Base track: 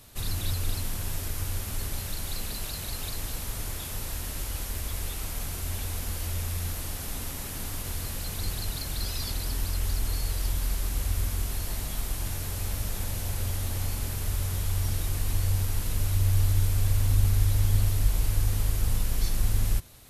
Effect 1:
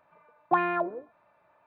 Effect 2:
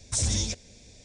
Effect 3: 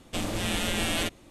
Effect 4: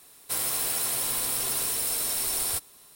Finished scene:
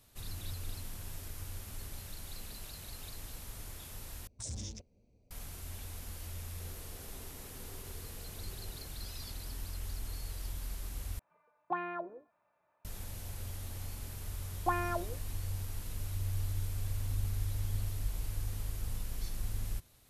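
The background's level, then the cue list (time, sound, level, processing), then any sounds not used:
base track −12 dB
0:04.27: overwrite with 2 −14 dB + adaptive Wiener filter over 25 samples
0:06.28: mix in 4 −10 dB + resonant band-pass 400 Hz, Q 3.1
0:11.19: overwrite with 1 −11.5 dB
0:14.15: mix in 1 −8 dB
not used: 3

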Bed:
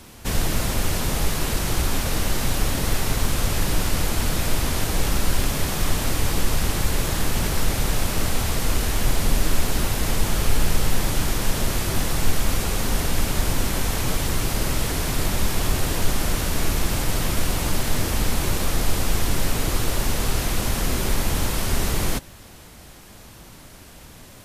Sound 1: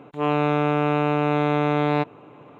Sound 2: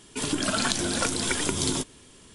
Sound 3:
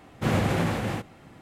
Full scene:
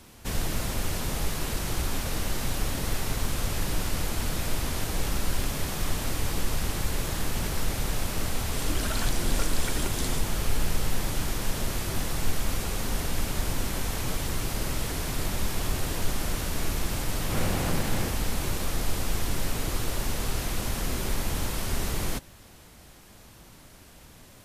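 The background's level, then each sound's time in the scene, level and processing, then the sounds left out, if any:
bed −6.5 dB
0:08.37: mix in 2 −17.5 dB + boost into a limiter +9 dB
0:17.09: mix in 3 −8 dB + compressor on every frequency bin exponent 0.6
not used: 1

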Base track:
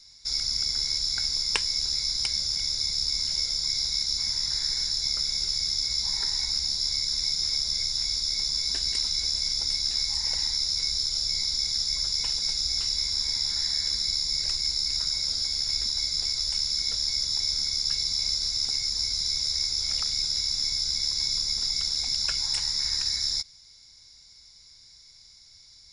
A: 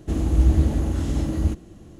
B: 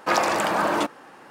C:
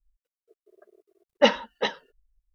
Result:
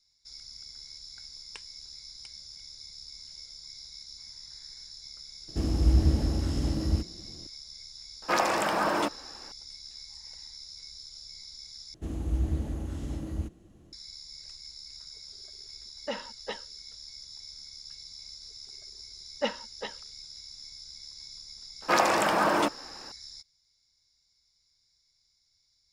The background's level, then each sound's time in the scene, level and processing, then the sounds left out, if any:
base track −18.5 dB
0:05.48: mix in A −5 dB
0:08.22: mix in B −4.5 dB
0:11.94: overwrite with A −11.5 dB
0:14.66: mix in C −10 dB + brickwall limiter −13 dBFS
0:18.00: mix in C −11.5 dB
0:21.82: mix in B −2 dB

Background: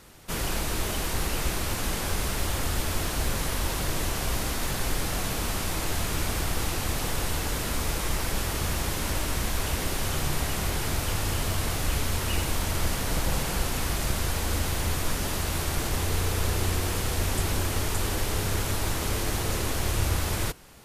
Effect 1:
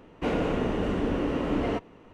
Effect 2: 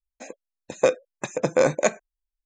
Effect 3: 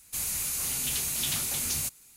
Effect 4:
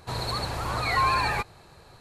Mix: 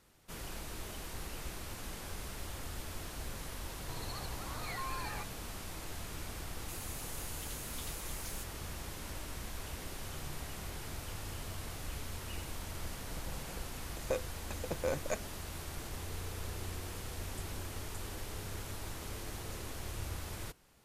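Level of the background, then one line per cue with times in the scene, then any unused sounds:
background −15 dB
0:03.81: mix in 4 −16 dB + brickwall limiter −16.5 dBFS
0:06.55: mix in 3 −17 dB
0:13.27: mix in 2 −16 dB
not used: 1

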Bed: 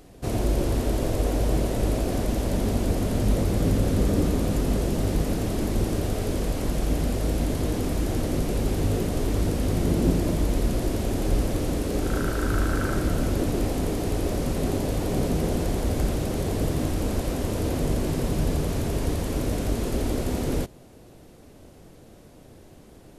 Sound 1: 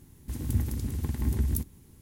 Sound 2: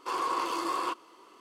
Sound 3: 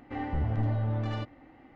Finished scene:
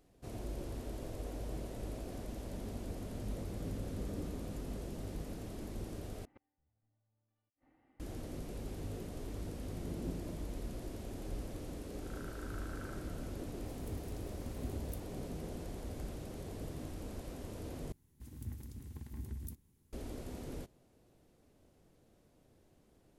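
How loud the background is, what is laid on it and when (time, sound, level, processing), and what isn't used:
bed −18.5 dB
0:06.25: overwrite with 3 −17 dB + gate with flip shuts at −29 dBFS, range −37 dB
0:13.37: mix in 1 −17 dB
0:17.92: overwrite with 1 −16.5 dB
not used: 2

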